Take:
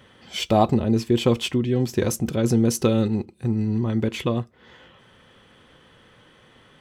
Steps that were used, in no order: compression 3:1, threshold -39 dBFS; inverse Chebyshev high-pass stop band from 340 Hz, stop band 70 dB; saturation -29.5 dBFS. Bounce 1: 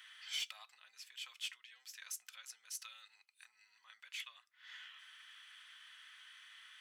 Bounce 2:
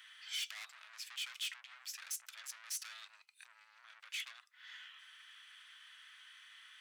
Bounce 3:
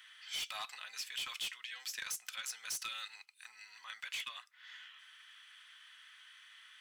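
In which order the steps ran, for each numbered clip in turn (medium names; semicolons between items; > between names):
compression > inverse Chebyshev high-pass > saturation; saturation > compression > inverse Chebyshev high-pass; inverse Chebyshev high-pass > saturation > compression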